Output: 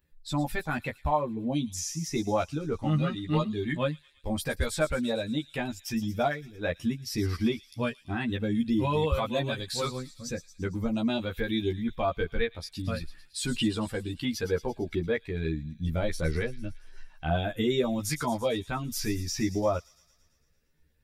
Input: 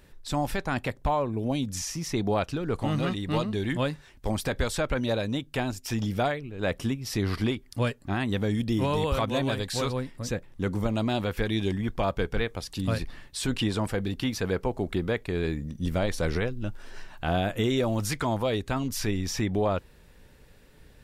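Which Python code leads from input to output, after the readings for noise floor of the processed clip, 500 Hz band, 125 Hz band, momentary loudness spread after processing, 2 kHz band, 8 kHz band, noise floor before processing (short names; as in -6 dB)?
-65 dBFS, -1.5 dB, -3.0 dB, 7 LU, -1.5 dB, -0.5 dB, -55 dBFS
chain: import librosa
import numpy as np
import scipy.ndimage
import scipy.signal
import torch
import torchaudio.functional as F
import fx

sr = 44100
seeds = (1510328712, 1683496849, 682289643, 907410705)

p1 = fx.bin_expand(x, sr, power=1.5)
p2 = fx.doubler(p1, sr, ms=13.0, db=-2.0)
y = p2 + fx.echo_wet_highpass(p2, sr, ms=113, feedback_pct=65, hz=4500.0, wet_db=-10.5, dry=0)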